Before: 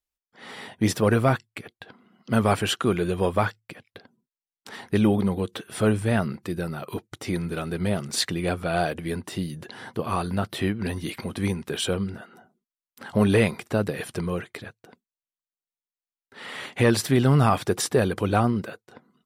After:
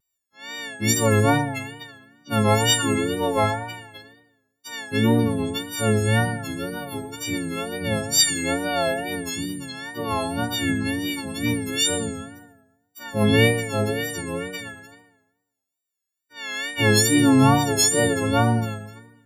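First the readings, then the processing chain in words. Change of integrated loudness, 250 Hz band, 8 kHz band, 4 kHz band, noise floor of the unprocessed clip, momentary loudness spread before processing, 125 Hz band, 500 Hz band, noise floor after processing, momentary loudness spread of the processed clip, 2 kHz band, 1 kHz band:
+3.5 dB, +2.5 dB, +11.5 dB, +8.0 dB, below −85 dBFS, 18 LU, +1.5 dB, +1.5 dB, −80 dBFS, 15 LU, +6.0 dB, +3.0 dB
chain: every partial snapped to a pitch grid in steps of 4 semitones
feedback delay network reverb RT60 0.98 s, low-frequency decay 1×, high-frequency decay 0.75×, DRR 0 dB
tape wow and flutter 87 cents
level −4 dB

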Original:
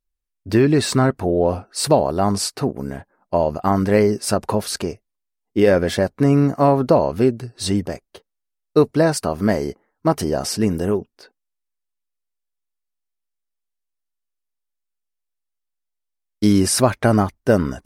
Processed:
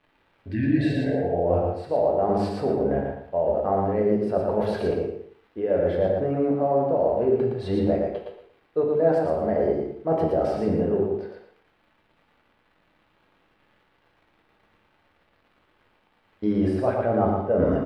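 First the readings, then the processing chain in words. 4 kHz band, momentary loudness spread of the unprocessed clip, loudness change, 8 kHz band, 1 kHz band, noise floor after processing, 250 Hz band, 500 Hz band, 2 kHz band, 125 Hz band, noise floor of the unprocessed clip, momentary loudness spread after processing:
below −15 dB, 9 LU, −5.0 dB, below −30 dB, −5.0 dB, −66 dBFS, −6.5 dB, −2.5 dB, −10.0 dB, −7.5 dB, −79 dBFS, 7 LU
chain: healed spectral selection 0:00.50–0:01.38, 330–1,500 Hz both
flat-topped bell 550 Hz +9.5 dB 1.2 octaves
mains-hum notches 50/100/150/200/250/300/350/400/450 Hz
reversed playback
downward compressor 8 to 1, threshold −21 dBFS, peak gain reduction 19.5 dB
reversed playback
surface crackle 320 per second −43 dBFS
high-frequency loss of the air 500 metres
on a send: repeating echo 115 ms, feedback 24%, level −3.5 dB
on the sum: reverb whose tail is shaped and stops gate 210 ms falling, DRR 1 dB

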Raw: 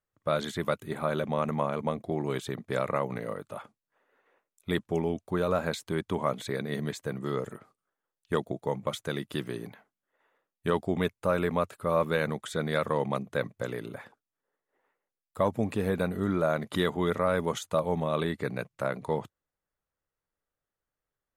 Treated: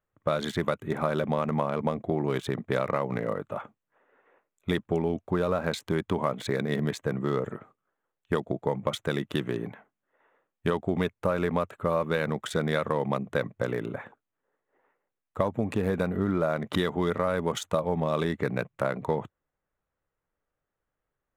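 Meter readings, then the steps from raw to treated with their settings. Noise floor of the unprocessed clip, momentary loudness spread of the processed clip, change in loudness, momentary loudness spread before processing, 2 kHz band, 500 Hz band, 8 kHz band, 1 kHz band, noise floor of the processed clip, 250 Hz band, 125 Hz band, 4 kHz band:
below −85 dBFS, 5 LU, +1.5 dB, 8 LU, +1.0 dB, +1.5 dB, +0.5 dB, +1.0 dB, below −85 dBFS, +2.5 dB, +2.5 dB, +1.5 dB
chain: adaptive Wiener filter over 9 samples
downward compressor, threshold −28 dBFS, peak gain reduction 8 dB
level +6 dB

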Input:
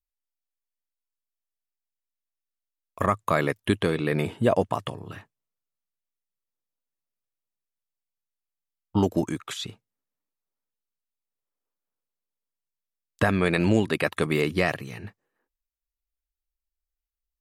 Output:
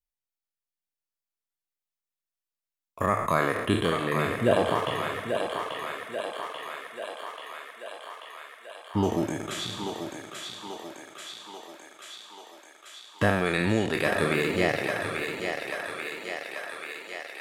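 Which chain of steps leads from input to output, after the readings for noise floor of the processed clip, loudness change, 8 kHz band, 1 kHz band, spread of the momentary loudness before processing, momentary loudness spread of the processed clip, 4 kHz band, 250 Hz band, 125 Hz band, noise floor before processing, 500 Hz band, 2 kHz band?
below −85 dBFS, −3.5 dB, +3.5 dB, +2.0 dB, 15 LU, 18 LU, +3.5 dB, −2.5 dB, −3.0 dB, below −85 dBFS, 0.0 dB, +2.5 dB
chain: peak hold with a decay on every bin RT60 1.81 s
feedback echo with a high-pass in the loop 837 ms, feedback 76%, high-pass 430 Hz, level −4.5 dB
reverb reduction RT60 0.59 s
level −4 dB

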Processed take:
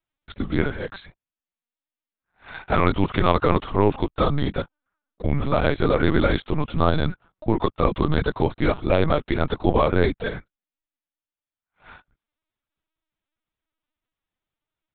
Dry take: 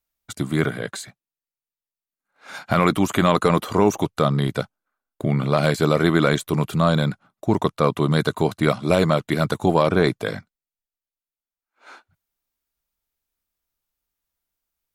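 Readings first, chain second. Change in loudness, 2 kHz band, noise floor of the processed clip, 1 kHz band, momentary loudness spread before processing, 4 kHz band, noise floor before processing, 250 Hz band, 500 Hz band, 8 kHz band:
−2.0 dB, −2.5 dB, below −85 dBFS, −1.5 dB, 12 LU, −4.0 dB, below −85 dBFS, −2.5 dB, −2.0 dB, below −40 dB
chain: linear-prediction vocoder at 8 kHz pitch kept
level −1 dB

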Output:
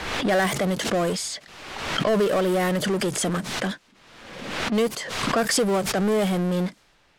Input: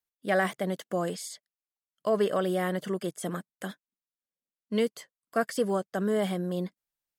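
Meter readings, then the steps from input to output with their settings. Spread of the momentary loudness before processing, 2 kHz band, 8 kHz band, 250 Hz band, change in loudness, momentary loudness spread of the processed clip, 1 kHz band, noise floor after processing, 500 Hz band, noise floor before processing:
13 LU, +8.0 dB, +13.5 dB, +7.0 dB, +6.5 dB, 11 LU, +7.0 dB, −60 dBFS, +5.5 dB, below −85 dBFS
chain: power curve on the samples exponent 0.5
low-pass that shuts in the quiet parts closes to 2,700 Hz, open at −19.5 dBFS
background raised ahead of every attack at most 45 dB per second

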